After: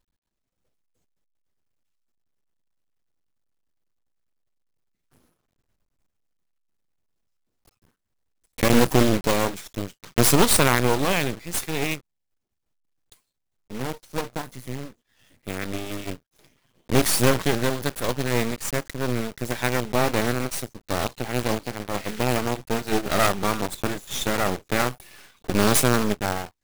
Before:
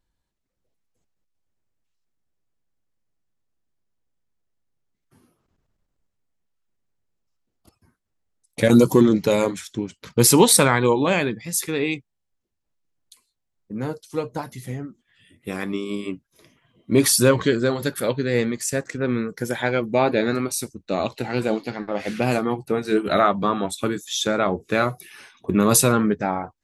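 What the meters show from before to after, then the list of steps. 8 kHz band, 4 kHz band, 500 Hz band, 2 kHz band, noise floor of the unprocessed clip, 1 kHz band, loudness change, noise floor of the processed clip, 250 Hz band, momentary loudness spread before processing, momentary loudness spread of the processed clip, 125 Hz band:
-4.0 dB, -0.5 dB, -4.0 dB, 0.0 dB, -78 dBFS, -1.5 dB, -3.0 dB, -79 dBFS, -4.5 dB, 16 LU, 15 LU, -1.0 dB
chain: block floating point 3-bit; half-wave rectifier

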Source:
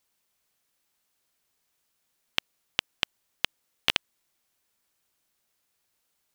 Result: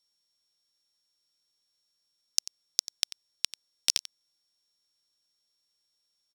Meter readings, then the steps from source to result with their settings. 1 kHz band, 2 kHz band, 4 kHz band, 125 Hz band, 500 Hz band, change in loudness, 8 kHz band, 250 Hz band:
-15.0 dB, -12.5 dB, -1.5 dB, under -10 dB, -13.5 dB, +0.5 dB, +14.5 dB, under -10 dB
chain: sample sorter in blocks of 8 samples; band shelf 5700 Hz +13 dB; on a send: echo 91 ms -15.5 dB; on the sum: gain -10.5 dB

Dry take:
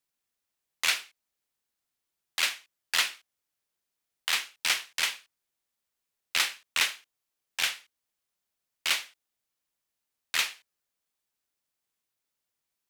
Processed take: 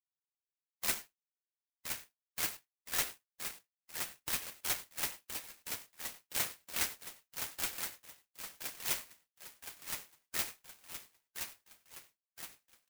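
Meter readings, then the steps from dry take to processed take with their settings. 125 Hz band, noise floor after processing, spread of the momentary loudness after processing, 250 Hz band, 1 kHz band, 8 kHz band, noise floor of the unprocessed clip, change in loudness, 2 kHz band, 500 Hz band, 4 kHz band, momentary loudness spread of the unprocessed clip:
n/a, under -85 dBFS, 18 LU, +4.5 dB, -7.0 dB, -4.0 dB, -85 dBFS, -10.0 dB, -12.5 dB, -0.5 dB, -12.5 dB, 12 LU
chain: per-bin expansion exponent 2; flange 1.6 Hz, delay 3.4 ms, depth 5.4 ms, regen +39%; HPF 510 Hz 24 dB/oct; comb 5.6 ms, depth 36%; in parallel at -1 dB: limiter -27 dBFS, peak gain reduction 10.5 dB; on the sum: bell 1100 Hz -7 dB; on a send: feedback echo 1.019 s, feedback 50%, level -6 dB; on the sum: non-linear reverb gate 0.12 s flat, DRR 11 dB; clock jitter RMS 0.1 ms; gain -3 dB

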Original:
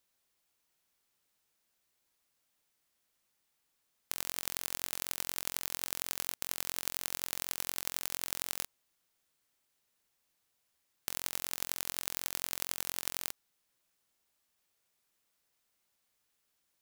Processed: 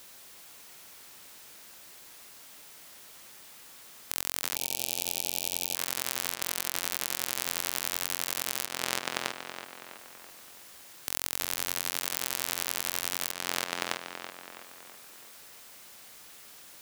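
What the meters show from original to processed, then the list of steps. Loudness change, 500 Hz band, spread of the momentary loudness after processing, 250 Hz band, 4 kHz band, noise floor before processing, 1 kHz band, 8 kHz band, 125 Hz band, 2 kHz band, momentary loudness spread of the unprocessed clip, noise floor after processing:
+5.0 dB, +9.5 dB, 18 LU, +8.0 dB, +7.5 dB, -79 dBFS, +9.0 dB, +6.0 dB, +5.0 dB, +8.5 dB, 3 LU, -51 dBFS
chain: tape echo 0.328 s, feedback 49%, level -5 dB, low-pass 3800 Hz; spectral gain 4.56–5.75, 890–2300 Hz -18 dB; in parallel at -2 dB: level quantiser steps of 20 dB; on the sum: low shelf 110 Hz -6.5 dB; compressor 10:1, threshold -44 dBFS, peak gain reduction 19 dB; maximiser +24.5 dB; gain -1 dB

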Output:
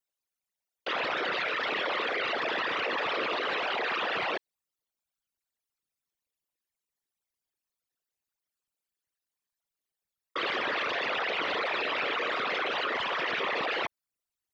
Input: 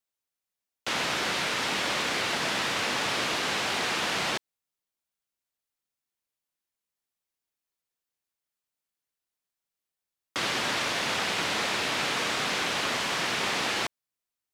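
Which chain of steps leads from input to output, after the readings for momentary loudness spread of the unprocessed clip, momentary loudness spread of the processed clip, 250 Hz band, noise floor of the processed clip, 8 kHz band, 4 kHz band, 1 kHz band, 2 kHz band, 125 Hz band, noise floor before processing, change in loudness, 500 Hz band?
3 LU, 3 LU, -5.0 dB, under -85 dBFS, under -20 dB, -5.5 dB, -0.5 dB, -1.0 dB, -12.5 dB, under -85 dBFS, -2.5 dB, +1.5 dB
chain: formant sharpening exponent 3; gain -1.5 dB

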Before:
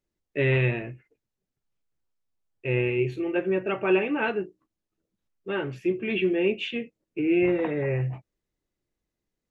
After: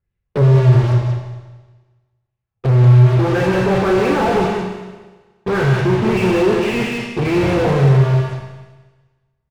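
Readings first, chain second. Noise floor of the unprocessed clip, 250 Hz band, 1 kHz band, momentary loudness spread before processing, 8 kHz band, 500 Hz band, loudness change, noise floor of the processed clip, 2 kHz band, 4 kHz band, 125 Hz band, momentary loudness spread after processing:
-85 dBFS, +9.5 dB, +15.5 dB, 13 LU, n/a, +9.0 dB, +11.5 dB, -76 dBFS, +6.5 dB, +9.0 dB, +19.0 dB, 14 LU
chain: resonant low shelf 170 Hz +13 dB, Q 1.5; treble ducked by the level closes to 310 Hz, closed at -15 dBFS; resonator 120 Hz, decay 0.53 s, mix 30%; LFO low-pass sine 1.8 Hz 740–2700 Hz; notch comb 310 Hz; in parallel at -7 dB: fuzz box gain 47 dB, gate -50 dBFS; on the sum: air absorption 62 m; on a send: echo 0.186 s -6.5 dB; on the sum: Schroeder reverb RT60 1.3 s, combs from 29 ms, DRR 3.5 dB; slew limiter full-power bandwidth 120 Hz; gain +2.5 dB

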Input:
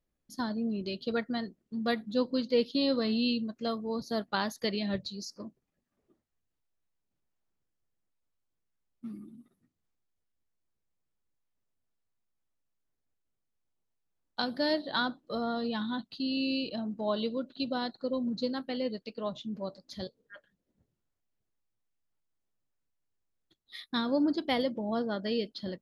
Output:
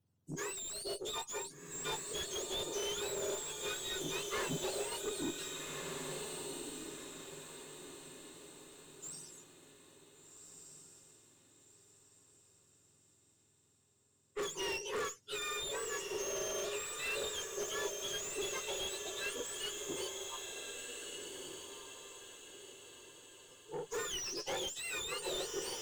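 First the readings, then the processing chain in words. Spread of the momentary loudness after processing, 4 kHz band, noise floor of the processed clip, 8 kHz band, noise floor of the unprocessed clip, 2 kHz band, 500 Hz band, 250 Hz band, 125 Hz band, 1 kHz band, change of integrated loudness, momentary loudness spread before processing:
16 LU, -2.5 dB, -72 dBFS, n/a, -83 dBFS, -2.5 dB, -6.5 dB, -16.5 dB, -7.0 dB, -7.0 dB, -7.0 dB, 14 LU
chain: spectrum mirrored in octaves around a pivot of 1300 Hz; notch 2300 Hz, Q 9.3; tube stage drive 38 dB, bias 0.3; on a send: diffused feedback echo 1.522 s, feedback 41%, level -5 dB; on the sum: slew limiter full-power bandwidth 35 Hz; gain +3.5 dB

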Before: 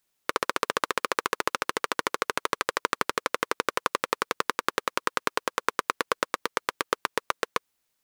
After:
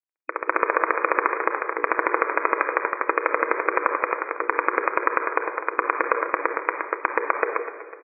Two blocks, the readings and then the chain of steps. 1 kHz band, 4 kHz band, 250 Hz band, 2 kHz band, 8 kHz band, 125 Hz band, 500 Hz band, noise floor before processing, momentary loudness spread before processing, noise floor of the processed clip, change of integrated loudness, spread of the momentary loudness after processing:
+6.0 dB, under -30 dB, +4.5 dB, +6.0 dB, under -40 dB, under -10 dB, +6.5 dB, -77 dBFS, 2 LU, -43 dBFS, +5.5 dB, 4 LU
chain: notches 60/120/180/240/300/360/420/480 Hz; AGC; bit-crush 11-bit; step gate ".x...xxxxx.xxx" 160 bpm -12 dB; brick-wall FIR band-pass 290–2500 Hz; feedback echo 0.251 s, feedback 51%, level -21 dB; shoebox room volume 2000 m³, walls mixed, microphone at 0.65 m; maximiser +11.5 dB; gain -1 dB

